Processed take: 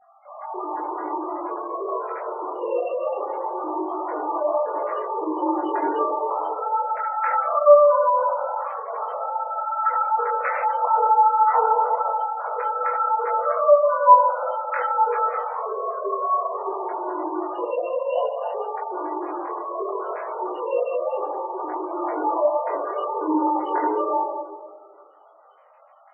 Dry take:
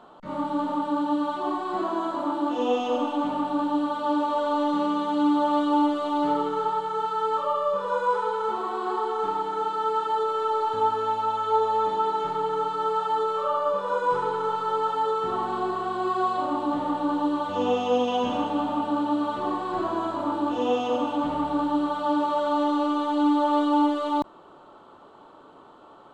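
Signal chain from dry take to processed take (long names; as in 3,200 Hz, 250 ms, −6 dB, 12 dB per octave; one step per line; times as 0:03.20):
three sine waves on the formant tracks
convolution reverb RT60 1.7 s, pre-delay 4 ms, DRR −3.5 dB
gate on every frequency bin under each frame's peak −20 dB strong
multi-voice chorus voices 2, 0.22 Hz, delay 21 ms, depth 2.1 ms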